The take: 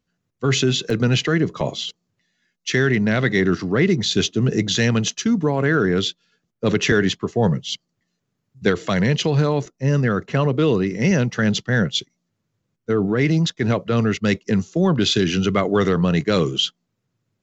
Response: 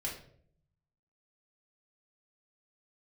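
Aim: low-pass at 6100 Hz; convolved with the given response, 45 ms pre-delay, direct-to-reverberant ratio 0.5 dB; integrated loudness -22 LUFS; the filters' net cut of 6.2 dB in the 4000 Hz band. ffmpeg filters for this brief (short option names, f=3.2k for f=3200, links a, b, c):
-filter_complex "[0:a]lowpass=6.1k,equalizer=f=4k:t=o:g=-7.5,asplit=2[a][b];[1:a]atrim=start_sample=2205,adelay=45[c];[b][c]afir=irnorm=-1:irlink=0,volume=-2dB[d];[a][d]amix=inputs=2:normalize=0,volume=-5dB"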